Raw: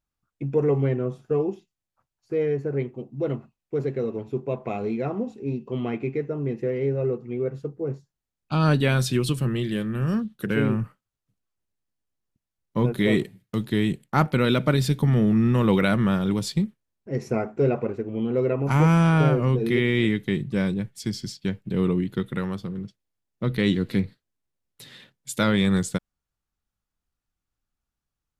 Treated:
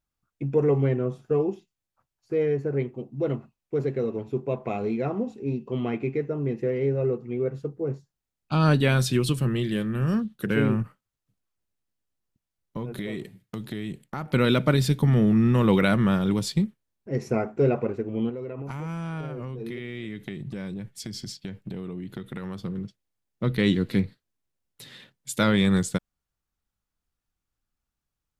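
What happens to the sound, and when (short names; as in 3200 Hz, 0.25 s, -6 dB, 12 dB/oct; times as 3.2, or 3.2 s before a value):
10.82–14.33 compressor, threshold -29 dBFS
18.29–22.6 compressor 16:1, threshold -30 dBFS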